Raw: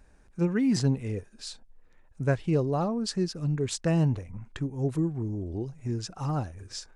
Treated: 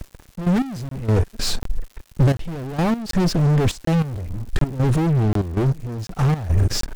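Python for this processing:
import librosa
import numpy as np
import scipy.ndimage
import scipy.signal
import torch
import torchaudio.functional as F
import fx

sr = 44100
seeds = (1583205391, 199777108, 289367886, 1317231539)

y = fx.fuzz(x, sr, gain_db=44.0, gate_db=-52.0)
y = fx.tilt_eq(y, sr, slope=-2.5)
y = fx.rider(y, sr, range_db=3, speed_s=0.5)
y = fx.step_gate(y, sr, bpm=97, pattern='xx.x...x.xx', floor_db=-12.0, edge_ms=4.5)
y = fx.dmg_crackle(y, sr, seeds[0], per_s=230.0, level_db=-31.0)
y = fx.high_shelf(y, sr, hz=4400.0, db=4.5)
y = fx.buffer_crackle(y, sr, first_s=0.89, period_s=0.74, block=1024, kind='zero')
y = y * librosa.db_to_amplitude(-8.0)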